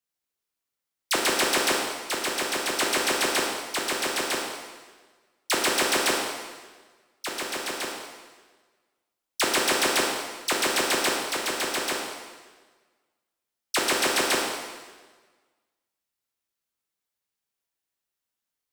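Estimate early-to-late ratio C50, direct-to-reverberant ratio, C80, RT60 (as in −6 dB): 1.5 dB, −1.5 dB, 3.5 dB, 1.4 s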